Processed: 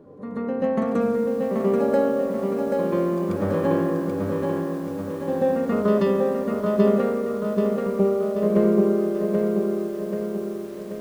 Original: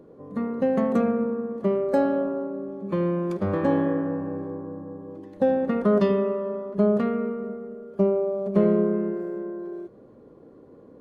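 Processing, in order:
backwards echo 135 ms −7 dB
feedback echo at a low word length 783 ms, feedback 55%, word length 8 bits, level −3.5 dB

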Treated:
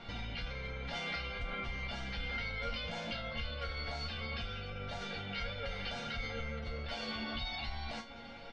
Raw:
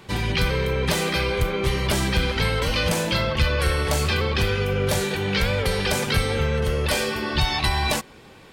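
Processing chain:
downward compressor, threshold −29 dBFS, peak gain reduction 13 dB
comb filter 1.4 ms, depth 64%
brickwall limiter −26.5 dBFS, peak gain reduction 9.5 dB
low-pass filter 4,600 Hz 24 dB per octave
resonators tuned to a chord A#3 minor, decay 0.23 s
level +14.5 dB

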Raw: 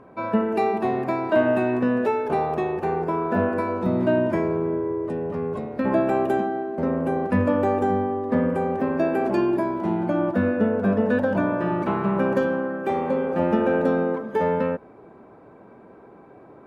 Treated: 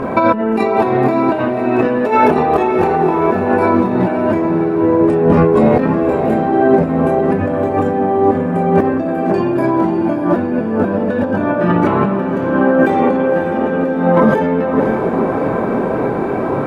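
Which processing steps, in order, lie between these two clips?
multi-voice chorus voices 6, 0.27 Hz, delay 26 ms, depth 4.6 ms
dynamic equaliser 270 Hz, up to +4 dB, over −38 dBFS, Q 2.2
compressor whose output falls as the input rises −36 dBFS, ratio −1
feedback delay with all-pass diffusion 569 ms, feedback 62%, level −9 dB
boost into a limiter +22 dB
level −1 dB

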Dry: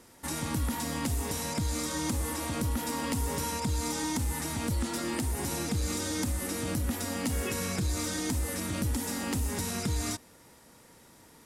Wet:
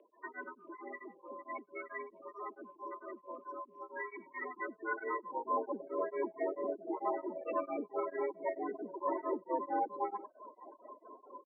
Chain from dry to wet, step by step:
0:02.03–0:03.92: samples sorted by size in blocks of 8 samples
high-frequency loss of the air 260 metres
in parallel at −4 dB: hard clipping −37.5 dBFS, distortion −6 dB
on the sum: spectral peaks only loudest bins 16
on a send: single-tap delay 97 ms −11.5 dB
on the sum: brickwall limiter −29.5 dBFS, peak gain reduction 9.5 dB
single-sideband voice off tune +100 Hz 150–3,400 Hz
band-pass filter sweep 2,700 Hz → 900 Hz, 0:04.08–0:05.77
reverb reduction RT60 0.54 s
tremolo along a rectified sine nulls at 4.5 Hz
level +16 dB

